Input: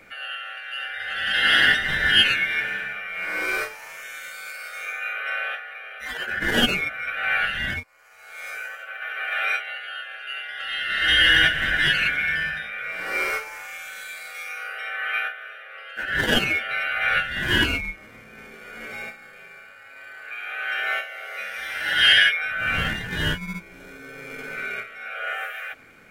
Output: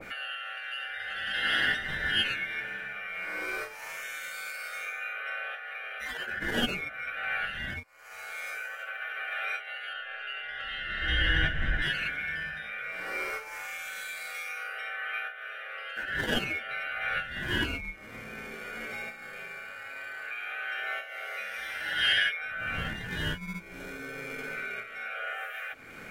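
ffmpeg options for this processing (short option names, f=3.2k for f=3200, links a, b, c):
-filter_complex "[0:a]asettb=1/sr,asplit=3[a][b][c];[a]atrim=end=9.934[d];[b]atrim=start=9.93:end=11.82,asetpts=PTS-STARTPTS,afade=t=in:d=0.004:c=qsin,afade=t=out:st=1.886:d=0.004:c=qsin,aemphasis=mode=reproduction:type=bsi[e];[c]atrim=start=11.816[f];[d][e]acrossfade=d=0.004:c1=hsin:c2=qsin[g];[g][f]acrossfade=d=0.004:c1=qsin:c2=hsin,acompressor=mode=upward:threshold=-23dB:ratio=2.5,adynamicequalizer=threshold=0.0355:dfrequency=1500:dqfactor=0.7:tfrequency=1500:tqfactor=0.7:attack=5:release=100:ratio=0.375:range=2:mode=cutabove:tftype=highshelf,volume=-7.5dB"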